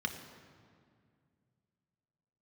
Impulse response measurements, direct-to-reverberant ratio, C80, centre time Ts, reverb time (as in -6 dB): 4.5 dB, 9.5 dB, 26 ms, 2.2 s